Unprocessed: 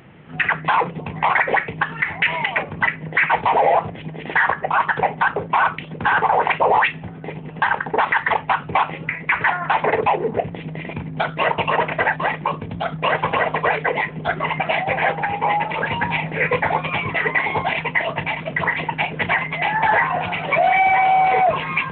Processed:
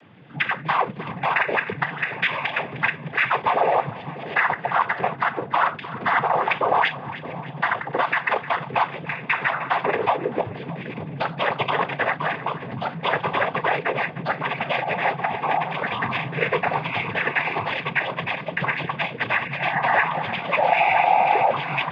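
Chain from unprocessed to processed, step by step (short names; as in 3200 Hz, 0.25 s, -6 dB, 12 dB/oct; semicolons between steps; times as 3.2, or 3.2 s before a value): noise vocoder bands 16; split-band echo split 810 Hz, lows 0.621 s, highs 0.306 s, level -15 dB; gain -3 dB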